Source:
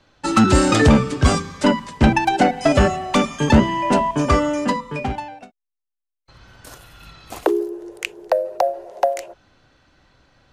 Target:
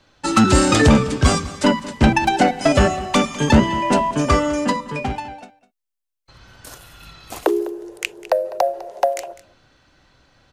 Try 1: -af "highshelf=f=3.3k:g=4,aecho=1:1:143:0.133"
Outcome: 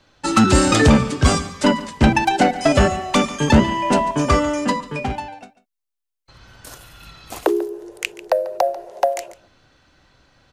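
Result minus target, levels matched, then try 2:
echo 60 ms early
-af "highshelf=f=3.3k:g=4,aecho=1:1:203:0.133"

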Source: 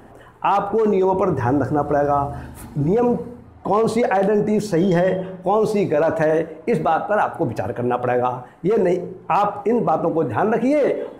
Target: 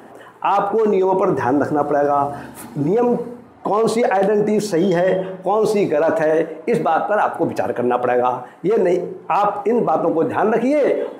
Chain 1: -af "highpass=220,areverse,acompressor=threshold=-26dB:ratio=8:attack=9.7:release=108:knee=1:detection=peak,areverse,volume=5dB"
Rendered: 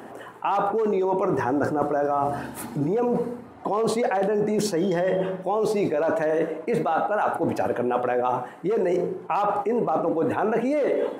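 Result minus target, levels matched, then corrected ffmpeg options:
compressor: peak gain reduction +7 dB
-af "highpass=220,areverse,acompressor=threshold=-18dB:ratio=8:attack=9.7:release=108:knee=1:detection=peak,areverse,volume=5dB"

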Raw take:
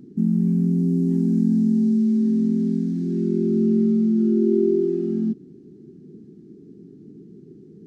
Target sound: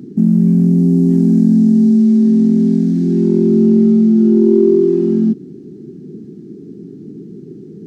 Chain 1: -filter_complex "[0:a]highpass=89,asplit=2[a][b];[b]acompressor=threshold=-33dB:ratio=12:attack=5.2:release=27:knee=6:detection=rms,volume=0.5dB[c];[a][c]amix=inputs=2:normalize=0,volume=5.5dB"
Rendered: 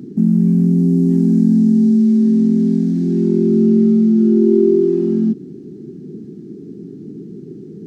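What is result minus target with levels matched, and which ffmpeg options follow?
compressor: peak gain reduction +8.5 dB
-filter_complex "[0:a]highpass=89,asplit=2[a][b];[b]acompressor=threshold=-23.5dB:ratio=12:attack=5.2:release=27:knee=6:detection=rms,volume=0.5dB[c];[a][c]amix=inputs=2:normalize=0,volume=5.5dB"

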